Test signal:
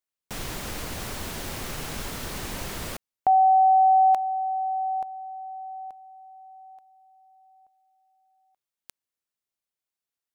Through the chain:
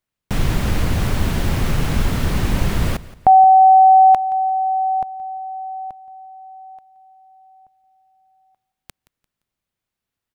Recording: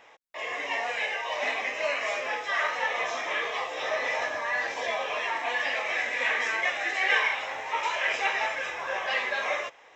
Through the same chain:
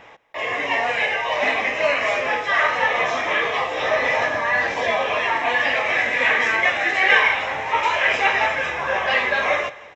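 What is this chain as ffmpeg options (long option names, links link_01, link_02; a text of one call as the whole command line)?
ffmpeg -i in.wav -af "bass=frequency=250:gain=11,treble=frequency=4000:gain=-7,aecho=1:1:173|346|519:0.112|0.037|0.0122,volume=9dB" out.wav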